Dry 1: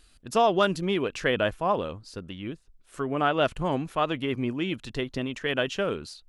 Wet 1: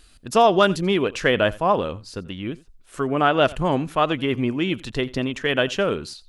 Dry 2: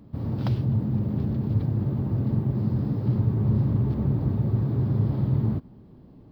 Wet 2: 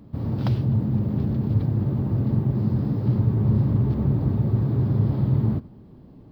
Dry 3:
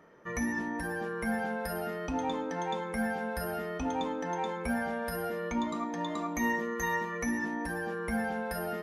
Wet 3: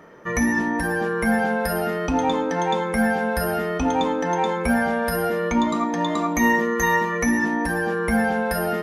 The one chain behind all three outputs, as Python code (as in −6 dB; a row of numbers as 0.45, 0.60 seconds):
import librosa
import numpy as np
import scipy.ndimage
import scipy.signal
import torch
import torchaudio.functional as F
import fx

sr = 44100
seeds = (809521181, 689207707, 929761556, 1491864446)

y = x + 10.0 ** (-21.5 / 20.0) * np.pad(x, (int(86 * sr / 1000.0), 0))[:len(x)]
y = y * 10.0 ** (-22 / 20.0) / np.sqrt(np.mean(np.square(y)))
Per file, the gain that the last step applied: +6.0, +2.5, +11.5 decibels